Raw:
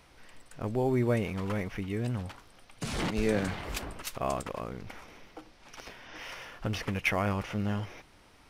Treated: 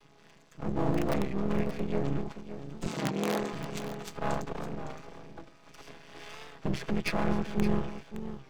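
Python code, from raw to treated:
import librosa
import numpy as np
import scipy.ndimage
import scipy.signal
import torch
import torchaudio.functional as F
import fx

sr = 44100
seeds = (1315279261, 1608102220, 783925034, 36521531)

p1 = fx.chord_vocoder(x, sr, chord='minor triad', root=49)
p2 = fx.high_shelf(p1, sr, hz=4300.0, db=11.0)
p3 = (np.mod(10.0 ** (21.0 / 20.0) * p2 + 1.0, 2.0) - 1.0) / 10.0 ** (21.0 / 20.0)
p4 = p2 + (p3 * 10.0 ** (-5.5 / 20.0))
p5 = fx.notch_comb(p4, sr, f0_hz=1500.0, at=(0.93, 1.5))
p6 = np.maximum(p5, 0.0)
p7 = fx.highpass(p6, sr, hz=fx.line((2.87, 130.0), (3.52, 390.0)), slope=12, at=(2.87, 3.52), fade=0.02)
p8 = p7 + fx.echo_single(p7, sr, ms=566, db=-11.5, dry=0)
p9 = fx.record_warp(p8, sr, rpm=33.33, depth_cents=100.0)
y = p9 * 10.0 ** (3.0 / 20.0)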